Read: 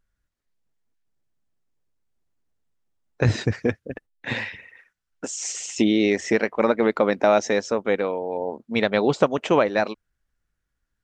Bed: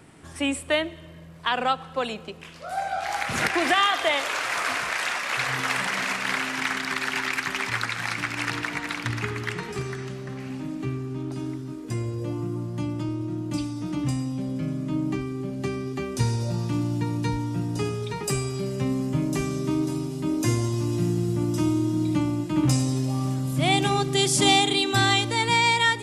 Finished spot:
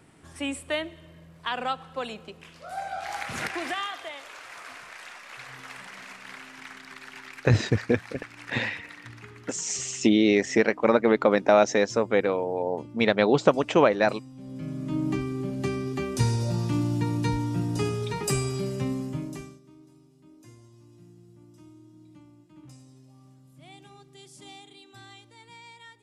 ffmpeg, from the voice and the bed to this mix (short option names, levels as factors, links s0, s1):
-filter_complex "[0:a]adelay=4250,volume=0.944[s0];[1:a]volume=3.55,afade=t=out:st=3.17:d=0.96:silence=0.281838,afade=t=in:st=14.35:d=0.77:silence=0.149624,afade=t=out:st=18.51:d=1.09:silence=0.0398107[s1];[s0][s1]amix=inputs=2:normalize=0"